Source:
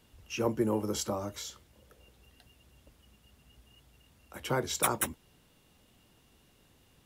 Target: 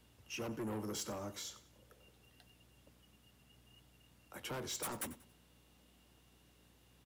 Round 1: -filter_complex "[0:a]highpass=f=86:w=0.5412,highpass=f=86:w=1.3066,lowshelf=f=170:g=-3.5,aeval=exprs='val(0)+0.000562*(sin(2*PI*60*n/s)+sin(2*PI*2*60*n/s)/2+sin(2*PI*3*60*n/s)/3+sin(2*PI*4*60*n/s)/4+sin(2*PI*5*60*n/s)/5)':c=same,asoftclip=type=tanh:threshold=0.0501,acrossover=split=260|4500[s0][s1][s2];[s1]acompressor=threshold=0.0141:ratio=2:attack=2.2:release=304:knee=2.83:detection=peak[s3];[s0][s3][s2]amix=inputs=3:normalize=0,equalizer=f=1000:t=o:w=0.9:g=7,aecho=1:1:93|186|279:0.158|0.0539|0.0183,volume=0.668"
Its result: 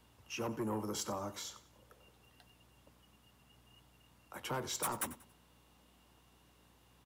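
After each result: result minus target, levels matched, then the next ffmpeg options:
1 kHz band +3.5 dB; saturation: distortion -5 dB
-filter_complex "[0:a]highpass=f=86:w=0.5412,highpass=f=86:w=1.3066,lowshelf=f=170:g=-3.5,aeval=exprs='val(0)+0.000562*(sin(2*PI*60*n/s)+sin(2*PI*2*60*n/s)/2+sin(2*PI*3*60*n/s)/3+sin(2*PI*4*60*n/s)/4+sin(2*PI*5*60*n/s)/5)':c=same,asoftclip=type=tanh:threshold=0.0501,acrossover=split=260|4500[s0][s1][s2];[s1]acompressor=threshold=0.0141:ratio=2:attack=2.2:release=304:knee=2.83:detection=peak[s3];[s0][s3][s2]amix=inputs=3:normalize=0,aecho=1:1:93|186|279:0.158|0.0539|0.0183,volume=0.668"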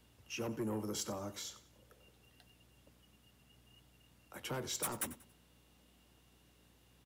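saturation: distortion -5 dB
-filter_complex "[0:a]highpass=f=86:w=0.5412,highpass=f=86:w=1.3066,lowshelf=f=170:g=-3.5,aeval=exprs='val(0)+0.000562*(sin(2*PI*60*n/s)+sin(2*PI*2*60*n/s)/2+sin(2*PI*3*60*n/s)/3+sin(2*PI*4*60*n/s)/4+sin(2*PI*5*60*n/s)/5)':c=same,asoftclip=type=tanh:threshold=0.0237,acrossover=split=260|4500[s0][s1][s2];[s1]acompressor=threshold=0.0141:ratio=2:attack=2.2:release=304:knee=2.83:detection=peak[s3];[s0][s3][s2]amix=inputs=3:normalize=0,aecho=1:1:93|186|279:0.158|0.0539|0.0183,volume=0.668"

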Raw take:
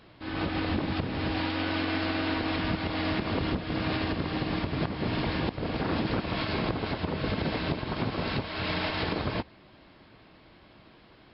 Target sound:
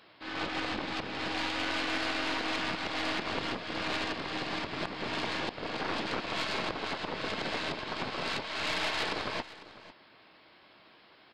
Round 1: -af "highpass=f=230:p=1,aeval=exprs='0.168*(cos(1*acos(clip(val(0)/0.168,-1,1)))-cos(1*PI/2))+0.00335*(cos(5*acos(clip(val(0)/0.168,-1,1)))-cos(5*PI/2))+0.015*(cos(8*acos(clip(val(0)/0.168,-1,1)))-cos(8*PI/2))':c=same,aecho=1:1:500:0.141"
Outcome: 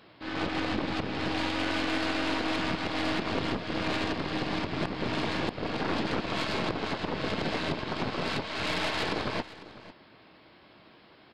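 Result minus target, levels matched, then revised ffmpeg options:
250 Hz band +4.5 dB
-af "highpass=f=770:p=1,aeval=exprs='0.168*(cos(1*acos(clip(val(0)/0.168,-1,1)))-cos(1*PI/2))+0.00335*(cos(5*acos(clip(val(0)/0.168,-1,1)))-cos(5*PI/2))+0.015*(cos(8*acos(clip(val(0)/0.168,-1,1)))-cos(8*PI/2))':c=same,aecho=1:1:500:0.141"

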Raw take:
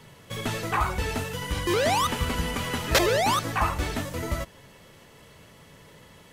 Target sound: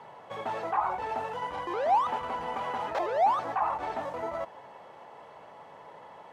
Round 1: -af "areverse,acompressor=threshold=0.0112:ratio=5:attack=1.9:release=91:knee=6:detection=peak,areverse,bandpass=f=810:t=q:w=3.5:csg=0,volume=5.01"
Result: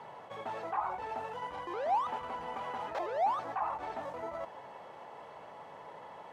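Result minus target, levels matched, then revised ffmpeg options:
compression: peak gain reduction +6 dB
-af "areverse,acompressor=threshold=0.0266:ratio=5:attack=1.9:release=91:knee=6:detection=peak,areverse,bandpass=f=810:t=q:w=3.5:csg=0,volume=5.01"

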